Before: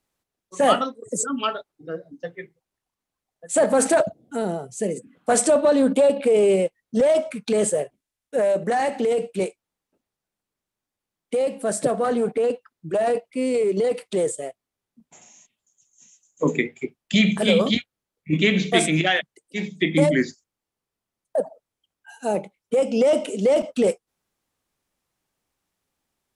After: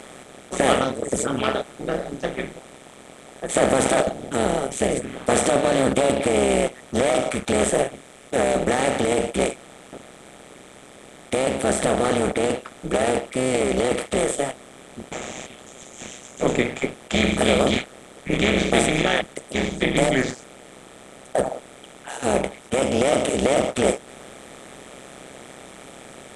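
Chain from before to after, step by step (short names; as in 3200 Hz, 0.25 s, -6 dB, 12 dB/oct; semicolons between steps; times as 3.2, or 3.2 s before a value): per-bin compression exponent 0.4; AM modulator 130 Hz, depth 85%; gain -2.5 dB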